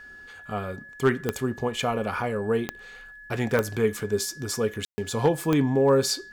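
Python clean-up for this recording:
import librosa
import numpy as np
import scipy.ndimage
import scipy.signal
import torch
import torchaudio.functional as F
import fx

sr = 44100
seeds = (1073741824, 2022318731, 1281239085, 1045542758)

y = fx.fix_declip(x, sr, threshold_db=-12.0)
y = fx.fix_declick_ar(y, sr, threshold=10.0)
y = fx.notch(y, sr, hz=1700.0, q=30.0)
y = fx.fix_ambience(y, sr, seeds[0], print_start_s=0.0, print_end_s=0.5, start_s=4.85, end_s=4.98)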